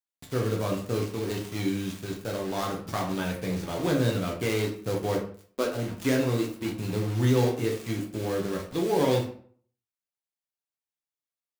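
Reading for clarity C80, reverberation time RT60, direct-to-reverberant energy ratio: 11.0 dB, 0.50 s, -1.0 dB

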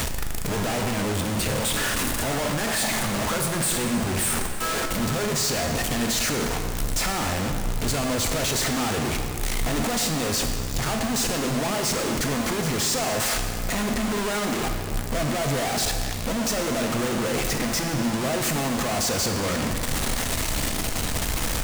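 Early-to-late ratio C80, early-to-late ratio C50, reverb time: 6.0 dB, 5.0 dB, 2.4 s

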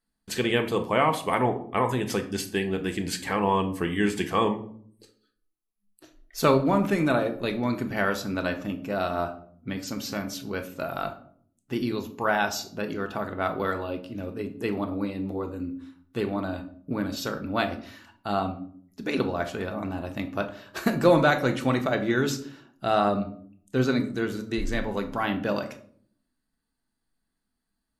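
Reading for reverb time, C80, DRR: 0.55 s, 17.0 dB, 6.0 dB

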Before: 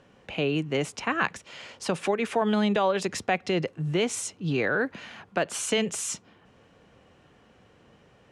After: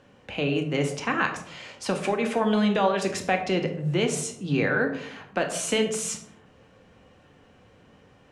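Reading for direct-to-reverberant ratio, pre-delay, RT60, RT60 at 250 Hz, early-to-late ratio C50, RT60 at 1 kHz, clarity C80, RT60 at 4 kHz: 4.0 dB, 4 ms, 0.75 s, 0.95 s, 9.5 dB, 0.60 s, 12.0 dB, 0.40 s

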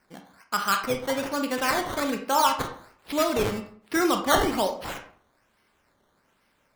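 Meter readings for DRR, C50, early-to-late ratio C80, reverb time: 4.5 dB, 8.5 dB, 13.0 dB, 0.55 s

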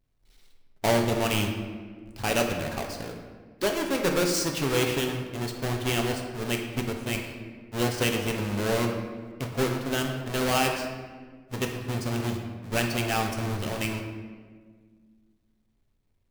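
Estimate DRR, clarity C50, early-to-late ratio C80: 2.0 dB, 5.0 dB, 6.5 dB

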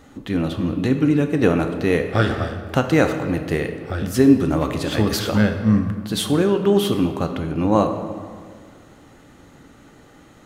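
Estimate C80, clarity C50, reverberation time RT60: 9.0 dB, 7.5 dB, 1.9 s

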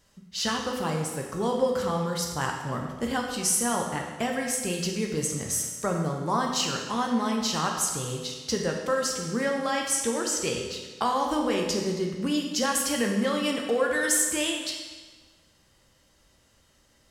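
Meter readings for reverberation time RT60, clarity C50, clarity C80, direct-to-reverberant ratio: 1.4 s, 3.5 dB, 5.5 dB, 0.5 dB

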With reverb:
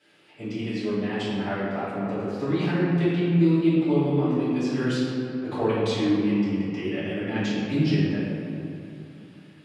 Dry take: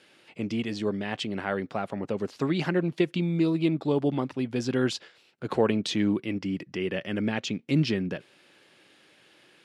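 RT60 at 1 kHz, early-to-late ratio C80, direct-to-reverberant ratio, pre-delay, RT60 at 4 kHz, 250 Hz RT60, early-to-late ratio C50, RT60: 2.7 s, -0.5 dB, -12.5 dB, 3 ms, 1.5 s, 3.3 s, -2.5 dB, 2.7 s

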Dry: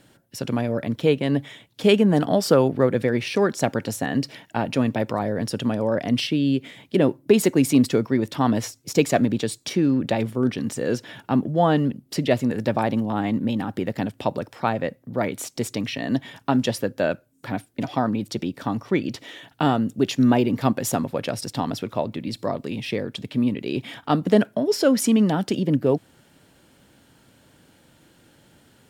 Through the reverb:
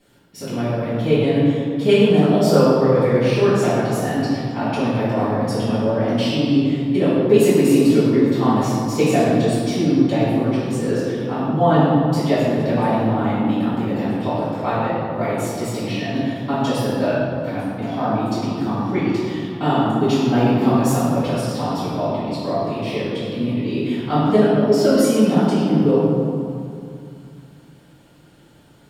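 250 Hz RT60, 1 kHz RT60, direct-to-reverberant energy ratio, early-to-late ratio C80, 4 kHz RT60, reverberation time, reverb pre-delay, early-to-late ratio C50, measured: 3.0 s, 2.6 s, -14.5 dB, -1.0 dB, 1.3 s, 2.5 s, 4 ms, -3.0 dB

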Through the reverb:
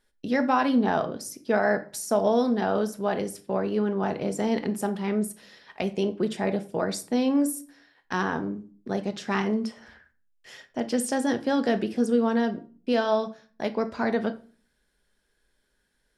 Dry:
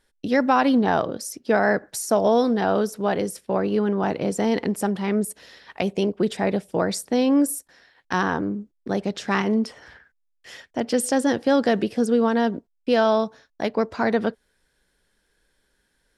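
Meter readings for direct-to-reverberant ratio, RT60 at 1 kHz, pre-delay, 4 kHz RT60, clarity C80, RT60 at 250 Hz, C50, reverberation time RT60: 8.0 dB, 0.40 s, 5 ms, 0.30 s, 21.5 dB, 0.65 s, 16.0 dB, 0.40 s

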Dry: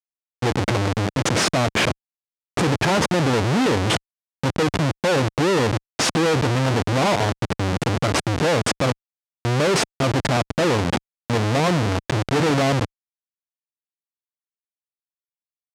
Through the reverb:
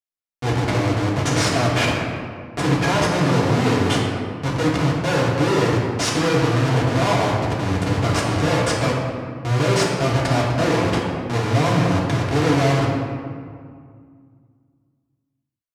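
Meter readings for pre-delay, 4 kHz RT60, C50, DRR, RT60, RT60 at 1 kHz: 3 ms, 1.1 s, 1.0 dB, -5.0 dB, 2.1 s, 2.0 s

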